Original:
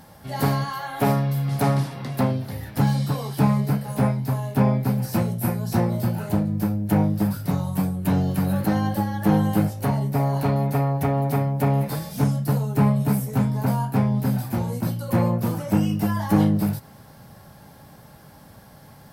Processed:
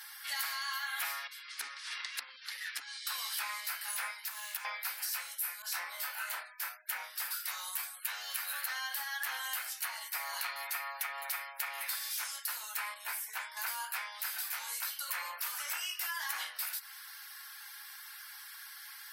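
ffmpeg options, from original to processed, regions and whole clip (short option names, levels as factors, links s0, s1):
-filter_complex "[0:a]asettb=1/sr,asplit=3[s0][s1][s2];[s0]atrim=end=1.274[s3];[s1]atrim=start=1.27:end=3.07,asetpts=PTS-STARTPTS,afade=t=in:d=0.004:c=qsin,afade=t=out:st=1.796:d=0.004:c=qsin,lowpass=8400,lowshelf=f=470:t=q:w=3:g=13,acompressor=threshold=0.158:ratio=10:attack=3.2:release=140:knee=1:detection=peak[s4];[s2]atrim=start=3.066[s5];[s3][s4]acrossfade=d=0.004:c1=hsin:c2=qsin[s6];[s6][s5]acrossfade=d=0.004:c1=qsin:c2=hsin,asettb=1/sr,asplit=3[s7][s8][s9];[s7]atrim=end=4.244[s10];[s8]atrim=start=4.24:end=4.65,asetpts=PTS-STARTPTS,afade=t=in:d=0.004:c=qsin,afade=t=out:st=0.406:d=0.004:c=qsin,equalizer=f=560:w=5.7:g=-5.5,acompressor=threshold=0.0316:ratio=4:attack=3.2:release=140:knee=1:detection=peak,acrusher=bits=7:mix=0:aa=0.5[s11];[s9]atrim=start=4.646[s12];[s10][s11]acrossfade=d=0.004:c1=hsin:c2=qsin[s13];[s13][s12]acrossfade=d=0.004:c1=qsin:c2=hsin,asettb=1/sr,asplit=3[s14][s15][s16];[s14]atrim=end=5.624[s17];[s15]atrim=start=5.62:end=6.91,asetpts=PTS-STARTPTS,afade=t=in:d=0.004:c=qsin,afade=t=out:st=1.286:d=0.004:c=qsin,asplit=2[s18][s19];[s19]adelay=26,volume=0.447[s20];[s18][s20]amix=inputs=2:normalize=0,atrim=end_sample=56889,adynamicequalizer=threshold=0.00501:dfrequency=2600:dqfactor=0.7:tfrequency=2600:tqfactor=0.7:attack=5:release=100:ratio=0.375:range=3:mode=cutabove:tftype=highshelf[s21];[s16]atrim=start=6.906[s22];[s17][s21]acrossfade=d=0.004:c1=hsin:c2=qsin[s23];[s23][s22]acrossfade=d=0.004:c1=qsin:c2=hsin,asettb=1/sr,asplit=3[s24][s25][s26];[s24]atrim=end=12.944[s27];[s25]atrim=start=12.94:end=13.57,asetpts=PTS-STARTPTS,afade=t=in:d=0.004:c=qsin,afade=t=out:st=0.626:d=0.004:c=qsin,highshelf=f=2600:g=-10,bandreject=f=1300:w=9.3[s28];[s26]atrim=start=13.566[s29];[s27][s28]acrossfade=d=0.004:c1=hsin:c2=qsin[s30];[s30][s29]acrossfade=d=0.004:c1=qsin:c2=hsin,highpass=f=1500:w=0.5412,highpass=f=1500:w=1.3066,afftfilt=real='re*gte(hypot(re,im),0.000891)':imag='im*gte(hypot(re,im),0.000891)':win_size=1024:overlap=0.75,acompressor=threshold=0.00708:ratio=6,volume=2.66"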